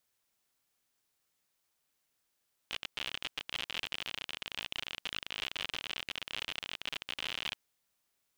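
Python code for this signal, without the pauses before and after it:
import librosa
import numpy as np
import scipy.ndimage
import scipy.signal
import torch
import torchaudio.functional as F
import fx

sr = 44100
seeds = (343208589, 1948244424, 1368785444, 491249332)

y = fx.geiger_clicks(sr, seeds[0], length_s=4.91, per_s=60.0, level_db=-21.0)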